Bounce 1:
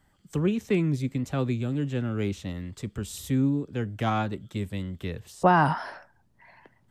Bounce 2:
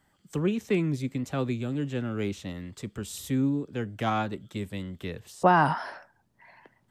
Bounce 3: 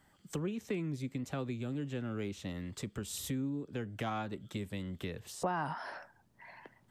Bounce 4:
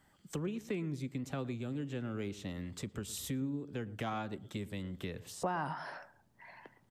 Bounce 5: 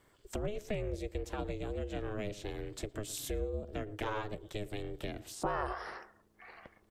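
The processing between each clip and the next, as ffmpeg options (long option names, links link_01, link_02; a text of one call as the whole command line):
ffmpeg -i in.wav -af "lowshelf=frequency=94:gain=-11" out.wav
ffmpeg -i in.wav -af "acompressor=threshold=-38dB:ratio=3,volume=1dB" out.wav
ffmpeg -i in.wav -filter_complex "[0:a]asplit=2[link_01][link_02];[link_02]adelay=114,lowpass=frequency=810:poles=1,volume=-15.5dB,asplit=2[link_03][link_04];[link_04]adelay=114,lowpass=frequency=810:poles=1,volume=0.33,asplit=2[link_05][link_06];[link_06]adelay=114,lowpass=frequency=810:poles=1,volume=0.33[link_07];[link_01][link_03][link_05][link_07]amix=inputs=4:normalize=0,volume=-1dB" out.wav
ffmpeg -i in.wav -af "aeval=exprs='val(0)*sin(2*PI*210*n/s)':channel_layout=same,volume=4dB" out.wav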